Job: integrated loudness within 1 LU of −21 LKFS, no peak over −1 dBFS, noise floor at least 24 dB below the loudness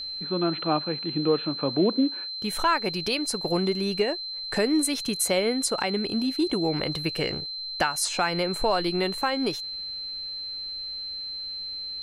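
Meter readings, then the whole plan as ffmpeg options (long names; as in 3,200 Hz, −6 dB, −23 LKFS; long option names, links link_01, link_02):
interfering tone 4,100 Hz; level of the tone −32 dBFS; integrated loudness −26.5 LKFS; sample peak −10.5 dBFS; target loudness −21.0 LKFS
→ -af "bandreject=frequency=4100:width=30"
-af "volume=5.5dB"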